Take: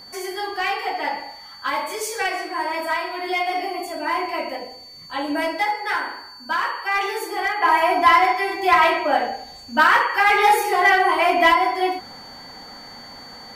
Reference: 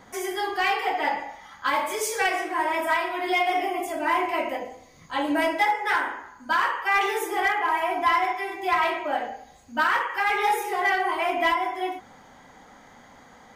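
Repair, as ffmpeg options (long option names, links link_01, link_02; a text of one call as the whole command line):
ffmpeg -i in.wav -af "bandreject=frequency=4500:width=30,agate=range=-21dB:threshold=-32dB,asetnsamples=nb_out_samples=441:pad=0,asendcmd='7.62 volume volume -7.5dB',volume=0dB" out.wav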